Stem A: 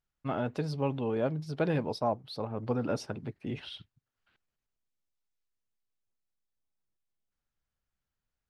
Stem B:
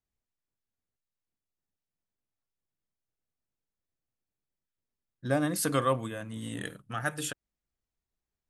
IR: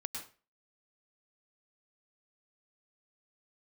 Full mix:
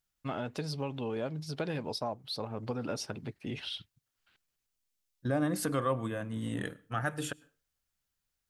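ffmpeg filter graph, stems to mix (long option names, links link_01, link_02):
-filter_complex "[0:a]highshelf=frequency=2600:gain=11,acompressor=threshold=-30dB:ratio=4,volume=-1.5dB[link_01];[1:a]agate=range=-15dB:threshold=-41dB:ratio=16:detection=peak,highshelf=frequency=2600:gain=-9.5,volume=2dB,asplit=2[link_02][link_03];[link_03]volume=-20.5dB[link_04];[2:a]atrim=start_sample=2205[link_05];[link_04][link_05]afir=irnorm=-1:irlink=0[link_06];[link_01][link_02][link_06]amix=inputs=3:normalize=0,alimiter=limit=-20.5dB:level=0:latency=1:release=184"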